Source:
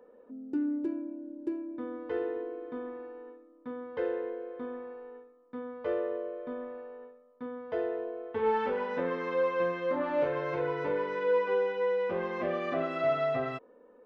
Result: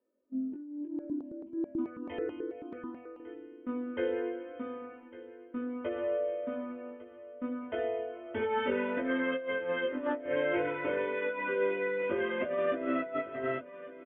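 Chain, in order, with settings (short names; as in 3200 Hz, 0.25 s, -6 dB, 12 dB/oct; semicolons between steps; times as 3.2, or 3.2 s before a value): HPF 54 Hz; notches 50/100/150/200/250/300/350 Hz; gate -45 dBFS, range -25 dB; steep low-pass 3300 Hz 96 dB/oct; bell 940 Hz -12 dB 1.1 oct; comb 3.2 ms, depth 83%; negative-ratio compressor -35 dBFS, ratio -0.5; chorus 0.63 Hz, delay 18.5 ms, depth 2.3 ms; feedback echo 1.153 s, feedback 48%, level -17 dB; 0.88–3.2 step phaser 9.2 Hz 510–1700 Hz; gain +6.5 dB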